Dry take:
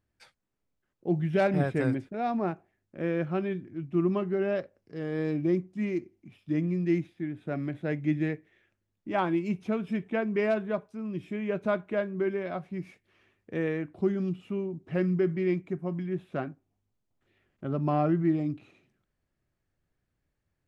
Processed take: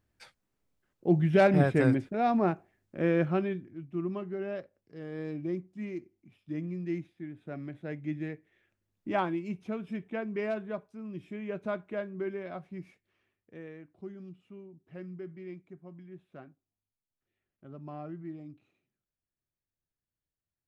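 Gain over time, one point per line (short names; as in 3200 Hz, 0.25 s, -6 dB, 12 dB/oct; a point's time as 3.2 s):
3.26 s +3 dB
3.86 s -7.5 dB
8.31 s -7.5 dB
9.08 s +1.5 dB
9.36 s -6 dB
12.79 s -6 dB
13.65 s -16 dB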